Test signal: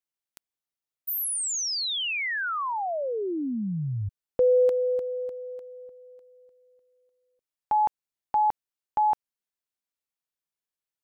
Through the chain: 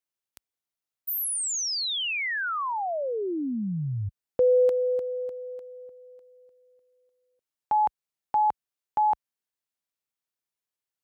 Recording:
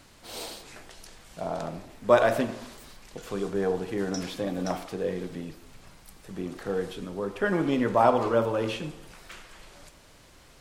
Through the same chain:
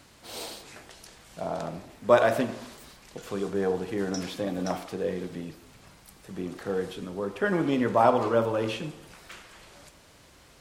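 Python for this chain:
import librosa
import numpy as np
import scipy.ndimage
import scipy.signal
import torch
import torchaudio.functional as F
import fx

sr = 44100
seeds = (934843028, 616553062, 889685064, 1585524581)

y = scipy.signal.sosfilt(scipy.signal.butter(2, 47.0, 'highpass', fs=sr, output='sos'), x)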